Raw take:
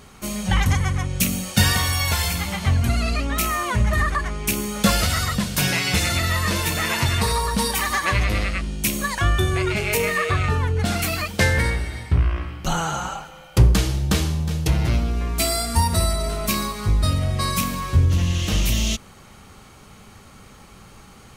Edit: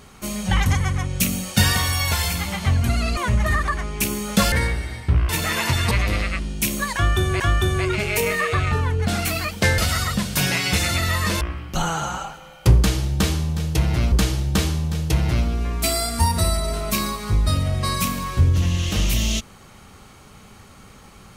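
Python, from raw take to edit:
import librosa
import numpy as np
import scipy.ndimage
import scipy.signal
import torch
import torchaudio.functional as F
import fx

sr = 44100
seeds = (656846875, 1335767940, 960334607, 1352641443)

y = fx.edit(x, sr, fx.cut(start_s=3.17, length_s=0.47),
    fx.swap(start_s=4.99, length_s=1.63, other_s=11.55, other_length_s=0.77),
    fx.cut(start_s=7.24, length_s=0.89),
    fx.repeat(start_s=9.17, length_s=0.45, count=2),
    fx.repeat(start_s=13.68, length_s=1.35, count=2), tone=tone)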